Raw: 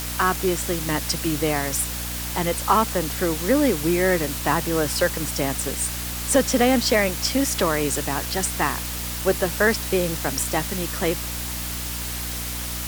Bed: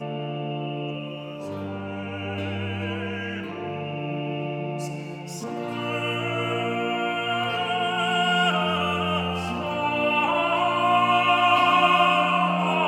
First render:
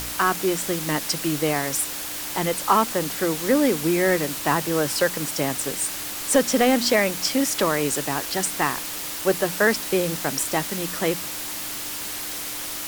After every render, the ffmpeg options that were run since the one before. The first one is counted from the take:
ffmpeg -i in.wav -af "bandreject=frequency=60:width_type=h:width=4,bandreject=frequency=120:width_type=h:width=4,bandreject=frequency=180:width_type=h:width=4,bandreject=frequency=240:width_type=h:width=4" out.wav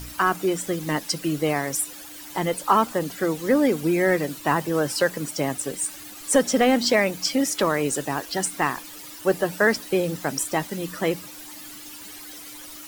ffmpeg -i in.wav -af "afftdn=noise_reduction=13:noise_floor=-32" out.wav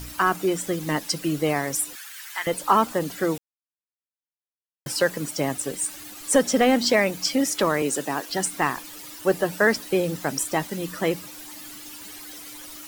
ffmpeg -i in.wav -filter_complex "[0:a]asettb=1/sr,asplit=3[link_01][link_02][link_03];[link_01]atrim=end=1.954[link_04];[link_02]atrim=start=1.95:end=2.47,asetpts=PTS-STARTPTS,afade=type=in:duration=0.004:curve=qsin,afade=type=out:start_time=0.516:duration=0.004:curve=qsin,highpass=frequency=1600:width_type=q:width=2.1[link_05];[link_03]atrim=start=2.466[link_06];[link_04][link_05]acrossfade=duration=0.004:curve1=hsin:curve2=qsin[link_07];[link_07][link_06]acrossfade=duration=0.004:curve1=qsin:curve2=hsin,asettb=1/sr,asplit=3[link_08][link_09][link_10];[link_08]atrim=end=7.824[link_11];[link_09]atrim=start=7.82:end=8.3,asetpts=PTS-STARTPTS,afade=type=in:duration=0.004:curve=qsin,afade=type=out:start_time=0.476:duration=0.004:curve=qsin,highpass=frequency=160:width=0.5412,highpass=frequency=160:width=1.3066[link_12];[link_10]atrim=start=8.296[link_13];[link_11][link_12]acrossfade=duration=0.004:curve1=hsin:curve2=qsin[link_14];[link_14][link_13]acrossfade=duration=0.004:curve1=qsin:curve2=hsin,asplit=3[link_15][link_16][link_17];[link_15]atrim=end=3.38,asetpts=PTS-STARTPTS,afade=type=out:start_time=3.376:duration=0.004:curve=hsin[link_18];[link_16]atrim=start=3.38:end=4.86,asetpts=PTS-STARTPTS,volume=0[link_19];[link_17]atrim=start=4.86,asetpts=PTS-STARTPTS,afade=type=in:duration=0.004:curve=hsin[link_20];[link_18][link_19][link_20]concat=n=3:v=0:a=1" out.wav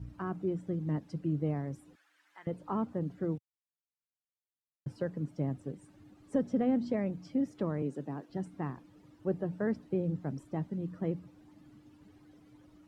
ffmpeg -i in.wav -af "bandpass=frequency=120:width_type=q:width=1.2:csg=0" out.wav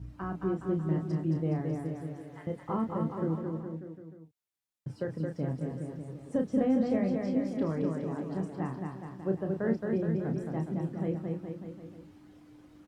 ffmpeg -i in.wav -filter_complex "[0:a]asplit=2[link_01][link_02];[link_02]adelay=31,volume=-6dB[link_03];[link_01][link_03]amix=inputs=2:normalize=0,aecho=1:1:220|418|596.2|756.6|900.9:0.631|0.398|0.251|0.158|0.1" out.wav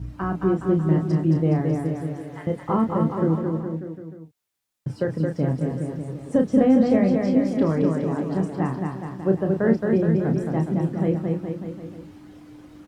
ffmpeg -i in.wav -af "volume=10dB" out.wav

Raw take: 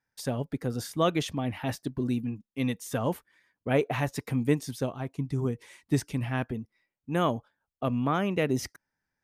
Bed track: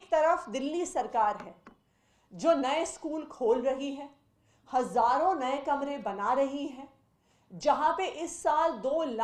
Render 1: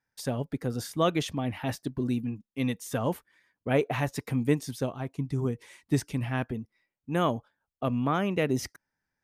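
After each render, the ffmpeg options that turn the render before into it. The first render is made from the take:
ffmpeg -i in.wav -af anull out.wav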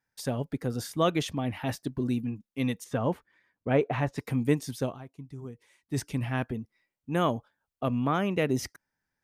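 ffmpeg -i in.wav -filter_complex "[0:a]asettb=1/sr,asplit=3[link_01][link_02][link_03];[link_01]atrim=end=2.844[link_04];[link_02]atrim=start=2.84:end=4.18,asetpts=PTS-STARTPTS,afade=type=in:duration=0.004:curve=qsin,afade=type=out:start_time=1.336:duration=0.004:curve=qsin,aemphasis=mode=reproduction:type=75fm[link_05];[link_03]atrim=start=4.176[link_06];[link_04][link_05]acrossfade=duration=0.004:curve1=hsin:curve2=qsin[link_07];[link_07][link_06]acrossfade=duration=0.004:curve1=qsin:curve2=hsin,asplit=3[link_08][link_09][link_10];[link_08]atrim=end=5.29,asetpts=PTS-STARTPTS,afade=type=out:start_time=4.95:duration=0.34:curve=exp:silence=0.251189[link_11];[link_09]atrim=start=5.29:end=5.64,asetpts=PTS-STARTPTS,volume=-12dB[link_12];[link_10]atrim=start=5.64,asetpts=PTS-STARTPTS,afade=type=in:duration=0.34:curve=exp:silence=0.251189[link_13];[link_11][link_12][link_13]concat=n=3:v=0:a=1" out.wav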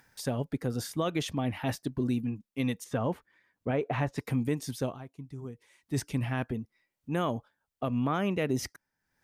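ffmpeg -i in.wav -af "acompressor=mode=upward:threshold=-49dB:ratio=2.5,alimiter=limit=-19.5dB:level=0:latency=1:release=106" out.wav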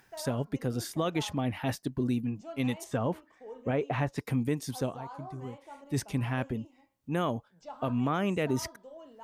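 ffmpeg -i in.wav -i bed.wav -filter_complex "[1:a]volume=-19dB[link_01];[0:a][link_01]amix=inputs=2:normalize=0" out.wav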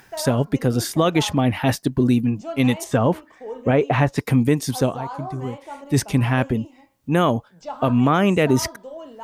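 ffmpeg -i in.wav -af "volume=12dB" out.wav

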